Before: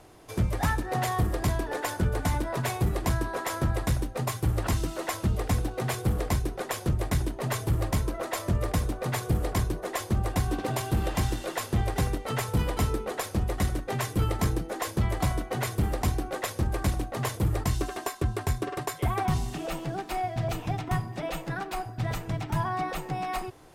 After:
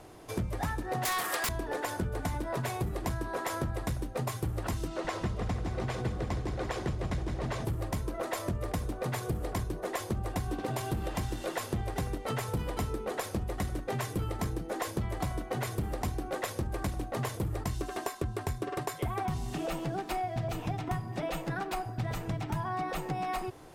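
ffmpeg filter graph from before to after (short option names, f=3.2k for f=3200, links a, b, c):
-filter_complex "[0:a]asettb=1/sr,asplit=3[a][b][c];[a]atrim=end=1.054[d];[b]atrim=start=1.05:end=1.49,asetpts=PTS-STARTPTS,afade=t=in:d=0.004:c=qsin,afade=t=out:st=0.436:d=0.004:c=qsin,highpass=1.3k,aeval=exprs='0.126*sin(PI/2*6.31*val(0)/0.126)':c=same[e];[c]atrim=start=1.486[f];[d][e]acrossfade=d=0.004:c1=hsin:c2=qsin[g];[g][f]acrossfade=d=0.004:c1=qsin:c2=hsin,asettb=1/sr,asplit=3[h][i][j];[h]atrim=end=4.884[k];[i]atrim=start=4.88:end=7.65,asetpts=PTS-STARTPTS,afade=t=in:d=0.004:c=qsin,afade=t=out:st=2.766:d=0.004:c=qsin,lowpass=5.7k,aecho=1:1:165|330|495|660|825|990:0.562|0.264|0.124|0.0584|0.0274|0.0129,atrim=end_sample=122157[l];[j]atrim=start=7.646[m];[k][l]acrossfade=d=0.004:c1=hsin:c2=qsin[n];[n][m]acrossfade=d=0.004:c1=qsin:c2=hsin,equalizer=f=320:w=0.3:g=2.5,acompressor=threshold=-30dB:ratio=6"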